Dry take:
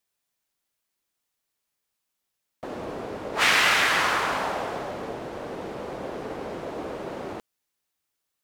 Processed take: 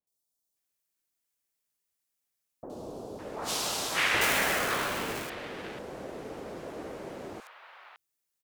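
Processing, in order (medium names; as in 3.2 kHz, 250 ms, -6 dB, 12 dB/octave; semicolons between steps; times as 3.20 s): 4.14–5.23 s: square wave that keeps the level; treble shelf 3.8 kHz +5.5 dB; three bands offset in time lows, highs, mids 70/560 ms, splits 1/3.7 kHz; trim -6 dB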